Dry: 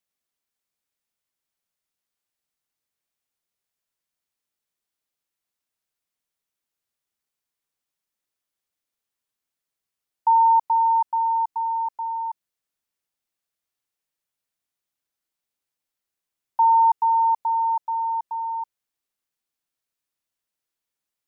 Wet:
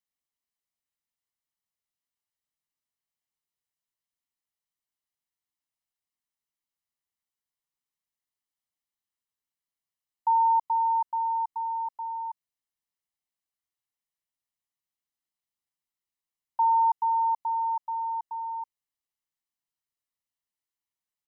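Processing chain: comb 1 ms, depth 43%; gain -8.5 dB

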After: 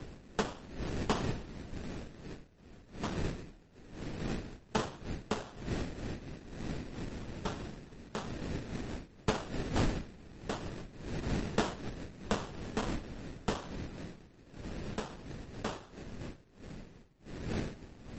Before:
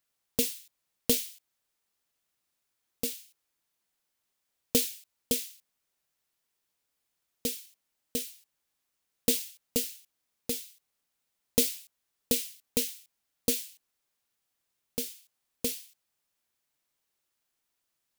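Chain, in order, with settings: wind noise 320 Hz -36 dBFS; in parallel at +1 dB: compressor 6:1, threshold -40 dBFS, peak gain reduction 19.5 dB; on the sum: frequency shift -38 Hz; sample-rate reducer 2200 Hz, jitter 20%; gain -7 dB; MP3 32 kbps 32000 Hz

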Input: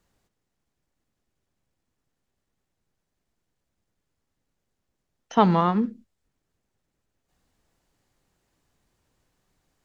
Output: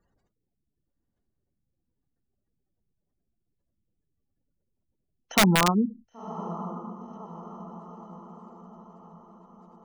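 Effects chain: spectral gate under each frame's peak -20 dB strong; diffused feedback echo 1.048 s, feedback 53%, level -14 dB; wrapped overs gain 11 dB

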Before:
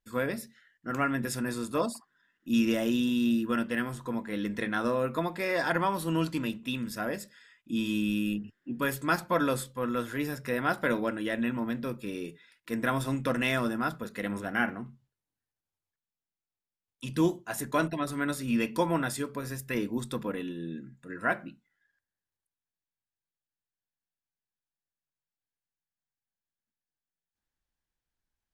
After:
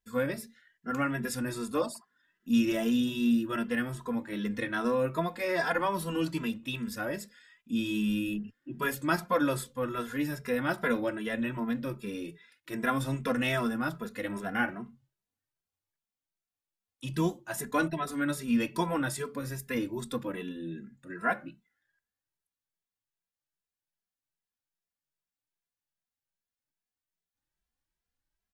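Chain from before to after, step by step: endless flanger 2.6 ms +2.5 Hz; gain +2 dB

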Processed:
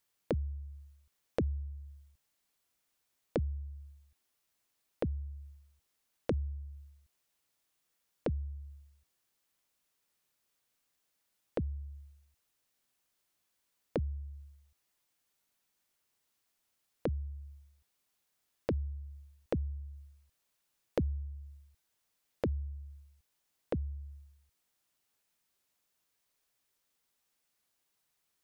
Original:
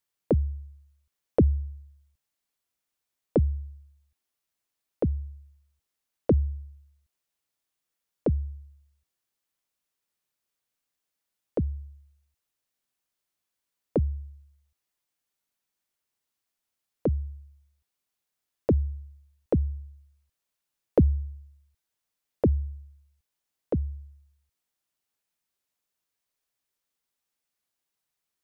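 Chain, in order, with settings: compressor 2.5:1, threshold -43 dBFS, peak gain reduction 17.5 dB; gain +4.5 dB

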